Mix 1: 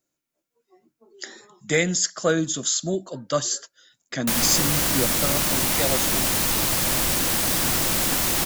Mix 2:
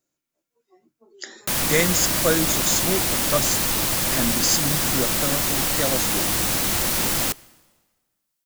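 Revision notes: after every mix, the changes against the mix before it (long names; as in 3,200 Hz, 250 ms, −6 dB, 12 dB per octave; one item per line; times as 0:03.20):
background: entry −2.80 s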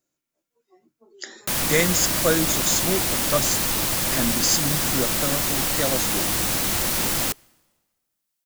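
background: send −7.0 dB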